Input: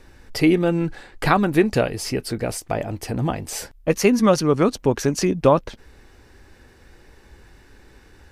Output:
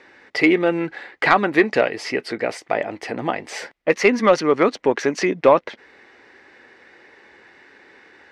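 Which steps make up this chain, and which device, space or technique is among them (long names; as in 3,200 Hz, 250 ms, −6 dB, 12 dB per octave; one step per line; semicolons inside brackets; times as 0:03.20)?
intercom (band-pass filter 350–3,800 Hz; parametric band 2,000 Hz +9 dB 0.37 octaves; soft clipping −5 dBFS, distortion −21 dB)
level +4 dB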